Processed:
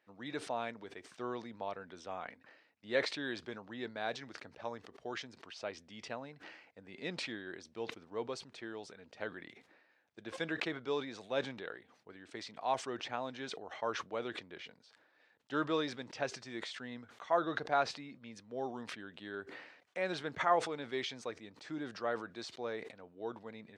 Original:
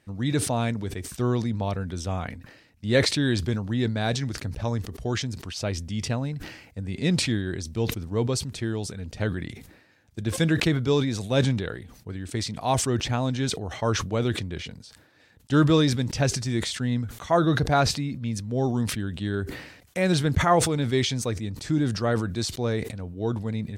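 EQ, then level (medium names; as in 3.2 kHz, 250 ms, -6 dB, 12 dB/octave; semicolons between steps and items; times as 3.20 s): Bessel high-pass 690 Hz, order 2; tape spacing loss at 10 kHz 25 dB; -4.0 dB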